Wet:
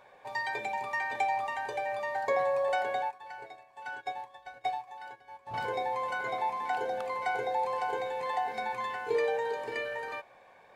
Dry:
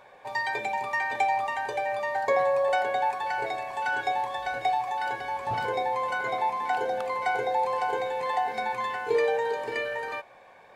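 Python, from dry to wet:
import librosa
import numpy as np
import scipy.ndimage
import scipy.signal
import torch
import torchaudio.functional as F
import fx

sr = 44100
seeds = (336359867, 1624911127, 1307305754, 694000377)

y = fx.upward_expand(x, sr, threshold_db=-36.0, expansion=2.5, at=(3.02, 5.54))
y = F.gain(torch.from_numpy(y), -4.5).numpy()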